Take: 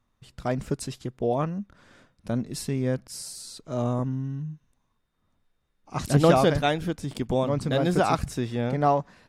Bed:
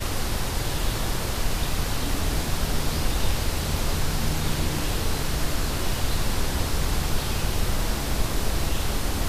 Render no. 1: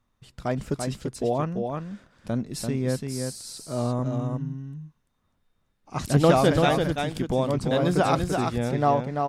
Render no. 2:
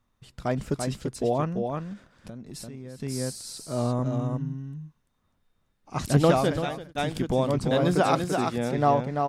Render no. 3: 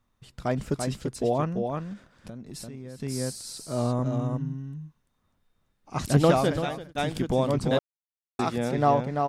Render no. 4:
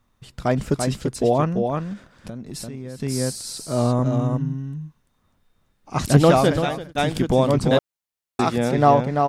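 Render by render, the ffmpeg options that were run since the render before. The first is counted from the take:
-af "aecho=1:1:339:0.562"
-filter_complex "[0:a]asettb=1/sr,asplit=3[a][b][c];[a]atrim=end=1.934[d];[b]atrim=start=1.93:end=3,asetpts=PTS-STARTPTS,afade=t=in:d=0.004:c=qsin,afade=t=out:st=1.066:d=0.004:c=qsin,acompressor=threshold=-36dB:ratio=8:attack=3.2:release=140:knee=1:detection=peak[e];[c]atrim=start=2.996[f];[d][e]acrossfade=d=0.004:c1=hsin:c2=qsin[g];[g][f]acrossfade=d=0.004:c1=qsin:c2=hsin,asettb=1/sr,asplit=3[h][i][j];[h]atrim=end=7.954[k];[i]atrim=start=7.95:end=8.78,asetpts=PTS-STARTPTS,afade=t=in:d=0.004:c=qsin,afade=t=out:st=0.826:d=0.004:c=qsin,highpass=150[l];[j]atrim=start=8.776[m];[k][l]acrossfade=d=0.004:c1=hsin:c2=qsin[n];[n][m]acrossfade=d=0.004:c1=qsin:c2=hsin,asplit=2[o][p];[o]atrim=end=6.95,asetpts=PTS-STARTPTS,afade=t=out:st=6.13:d=0.82[q];[p]atrim=start=6.95,asetpts=PTS-STARTPTS,afade=t=in:d=0.004:c=hsin[r];[q][r]concat=n=2:v=0:a=1"
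-filter_complex "[0:a]asplit=3[a][b][c];[a]atrim=end=7.79,asetpts=PTS-STARTPTS,afade=t=out:st=7.786:d=0.004:c=hsin[d];[b]atrim=start=7.79:end=8.39,asetpts=PTS-STARTPTS,volume=0[e];[c]atrim=start=8.39,asetpts=PTS-STARTPTS,afade=t=in:d=0.004:c=hsin[f];[d][e][f]concat=n=3:v=0:a=1"
-af "volume=6.5dB,alimiter=limit=-2dB:level=0:latency=1"

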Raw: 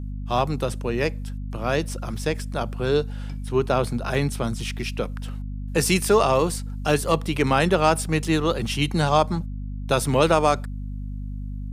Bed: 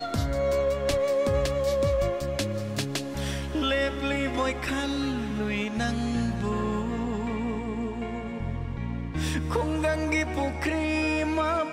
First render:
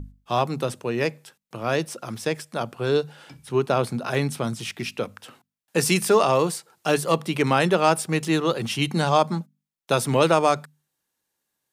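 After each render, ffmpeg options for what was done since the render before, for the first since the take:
-af "bandreject=f=50:t=h:w=6,bandreject=f=100:t=h:w=6,bandreject=f=150:t=h:w=6,bandreject=f=200:t=h:w=6,bandreject=f=250:t=h:w=6"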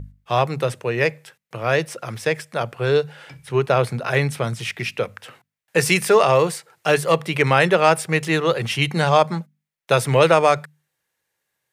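-af "equalizer=f=125:t=o:w=1:g=7,equalizer=f=250:t=o:w=1:g=-7,equalizer=f=500:t=o:w=1:g=6,equalizer=f=2k:t=o:w=1:g=9"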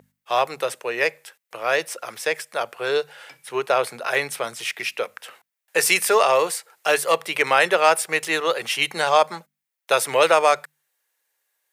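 -af "highpass=500,highshelf=f=9.2k:g=8.5"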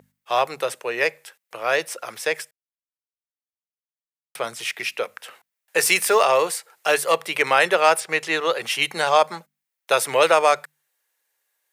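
-filter_complex "[0:a]asettb=1/sr,asplit=3[a][b][c];[a]atrim=end=5.784[d];[b]atrim=start=5.78:end=6.25,asetpts=PTS-STARTPTS,afade=t=in:d=0.004:c=qsin,afade=t=out:st=0.466:d=0.004:c=qsin,acrusher=bits=6:mix=0:aa=0.5[e];[c]atrim=start=6.246[f];[d][e]acrossfade=d=0.004:c1=hsin:c2=qsin[g];[g][f]acrossfade=d=0.004:c1=qsin:c2=hsin,asettb=1/sr,asplit=3[h][i][j];[h]atrim=end=8.004[k];[i]atrim=start=8:end=8.63,asetpts=PTS-STARTPTS,afade=t=in:d=0.004:c=qsin,afade=t=out:st=0.626:d=0.004:c=qsin,acrossover=split=6900[l][m];[m]acompressor=threshold=-47dB:ratio=4:attack=1:release=60[n];[l][n]amix=inputs=2:normalize=0[o];[j]atrim=start=8.626[p];[k][o]acrossfade=d=0.004:c1=hsin:c2=qsin[q];[q][p]acrossfade=d=0.004:c1=qsin:c2=hsin,asplit=3[r][s][t];[r]atrim=end=2.51,asetpts=PTS-STARTPTS,afade=t=out:st=2.506:d=0.004:c=hsin[u];[s]atrim=start=2.51:end=4.35,asetpts=PTS-STARTPTS,volume=0[v];[t]atrim=start=4.35,asetpts=PTS-STARTPTS,afade=t=in:d=0.004:c=hsin[w];[u][v][w]concat=n=3:v=0:a=1"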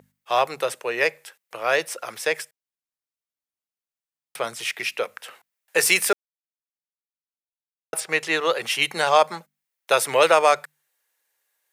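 -filter_complex "[0:a]asplit=3[a][b][c];[a]atrim=end=6.13,asetpts=PTS-STARTPTS,afade=t=out:st=6.126:d=0.004:c=hsin[d];[b]atrim=start=6.13:end=7.93,asetpts=PTS-STARTPTS,volume=0[e];[c]atrim=start=7.93,asetpts=PTS-STARTPTS,afade=t=in:d=0.004:c=hsin[f];[d][e][f]concat=n=3:v=0:a=1"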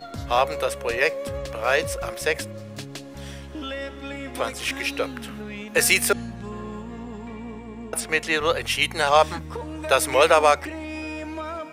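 -filter_complex "[1:a]volume=-6.5dB[a];[0:a][a]amix=inputs=2:normalize=0"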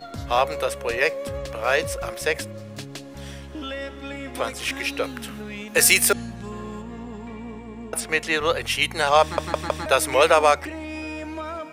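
-filter_complex "[0:a]asettb=1/sr,asplit=3[a][b][c];[a]atrim=end=5.044[d];[b]atrim=start=5.04:end=6.82,asetpts=PTS-STARTPTS,afade=t=in:d=0.004:c=qsin,afade=t=out:st=1.776:d=0.004:c=qsin,highshelf=f=4.4k:g=6[e];[c]atrim=start=6.816[f];[d][e]acrossfade=d=0.004:c1=hsin:c2=qsin[g];[g][f]acrossfade=d=0.004:c1=qsin:c2=hsin,asplit=5[h][i][j][k][l];[h]atrim=end=9.382[m];[i]atrim=start=9.218:end=9.382[n];[j]atrim=start=9.218:end=9.382[o];[k]atrim=start=9.218:end=9.382[p];[l]atrim=start=9.858[q];[m][n]acrossfade=d=0.004:c1=hsin:c2=hsin[r];[r][o]acrossfade=d=0.004:c1=hsin:c2=hsin[s];[s][p]acrossfade=d=0.004:c1=hsin:c2=hsin[t];[t][q]acrossfade=d=0.004:c1=hsin:c2=hsin"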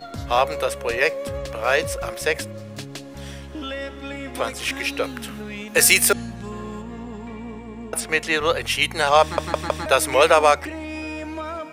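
-af "volume=1.5dB,alimiter=limit=-2dB:level=0:latency=1"

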